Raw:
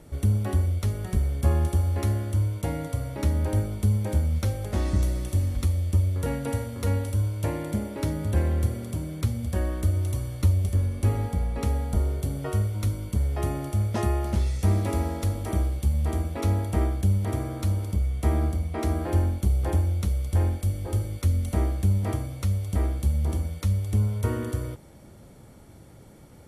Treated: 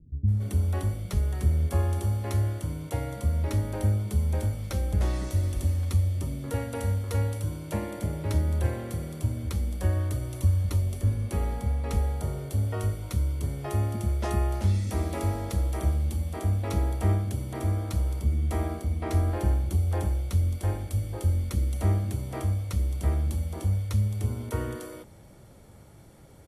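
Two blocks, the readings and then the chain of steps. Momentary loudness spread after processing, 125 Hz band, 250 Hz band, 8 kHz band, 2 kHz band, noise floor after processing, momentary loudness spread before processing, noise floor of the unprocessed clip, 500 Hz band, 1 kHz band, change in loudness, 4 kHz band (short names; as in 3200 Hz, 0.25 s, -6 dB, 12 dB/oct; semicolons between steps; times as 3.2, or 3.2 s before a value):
6 LU, -1.5 dB, -3.5 dB, -1.5 dB, -1.5 dB, -50 dBFS, 5 LU, -49 dBFS, -2.5 dB, -1.5 dB, -2.0 dB, -1.5 dB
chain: bands offset in time lows, highs 0.28 s, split 250 Hz; gain -1.5 dB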